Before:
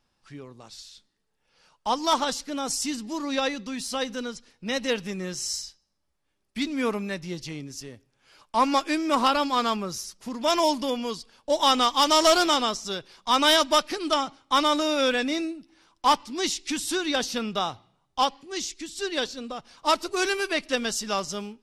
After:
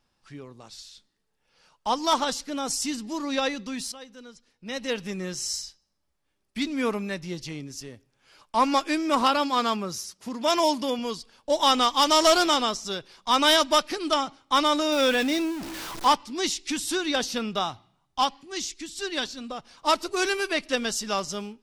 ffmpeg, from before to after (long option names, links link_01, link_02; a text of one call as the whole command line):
ffmpeg -i in.wav -filter_complex "[0:a]asettb=1/sr,asplit=3[link_01][link_02][link_03];[link_01]atrim=end=9.214[link_04];[link_02]atrim=start=9.21:end=10.99,asetpts=PTS-STARTPTS,afade=type=in:duration=0.004:curve=qsin,afade=type=out:start_time=1.776:duration=0.004:curve=qsin,highpass=62[link_05];[link_03]atrim=start=10.986[link_06];[link_04][link_05]acrossfade=duration=0.004:curve1=hsin:curve2=qsin[link_07];[link_07][link_06]acrossfade=duration=0.004:curve1=qsin:curve2=hsin,asettb=1/sr,asplit=3[link_08][link_09][link_10];[link_08]atrim=end=14.924[link_11];[link_09]atrim=start=14.92:end=16.08,asetpts=PTS-STARTPTS,afade=type=in:duration=0.004:curve=qsin,afade=type=out:start_time=1.156:duration=0.004:curve=qsin,aeval=exprs='val(0)+0.5*0.0299*sgn(val(0))':channel_layout=same[link_12];[link_10]atrim=start=16.076[link_13];[link_11][link_12]acrossfade=duration=0.004:curve1=hsin:curve2=qsin[link_14];[link_14][link_13]acrossfade=duration=0.004:curve1=qsin:curve2=hsin,asettb=1/sr,asplit=3[link_15][link_16][link_17];[link_15]atrim=end=17.634[link_18];[link_16]atrim=start=17.63:end=19.5,asetpts=PTS-STARTPTS,afade=type=in:duration=0.004:curve=qsin,afade=type=out:start_time=1.866:duration=0.004:curve=qsin,equalizer=frequency=480:width=4.1:gain=-10[link_19];[link_17]atrim=start=19.496[link_20];[link_18][link_19]acrossfade=duration=0.004:curve1=hsin:curve2=qsin[link_21];[link_21][link_20]acrossfade=duration=0.004:curve1=qsin:curve2=hsin,asplit=2[link_22][link_23];[link_22]atrim=end=3.92,asetpts=PTS-STARTPTS,afade=type=out:start_time=3.916:duration=0.004:curve=hsin:silence=0.16788[link_24];[link_23]atrim=start=3.92,asetpts=PTS-STARTPTS,afade=type=in:duration=1.2:curve=qua:silence=0.16788[link_25];[link_24][link_25]concat=n=2:v=0:a=1" out.wav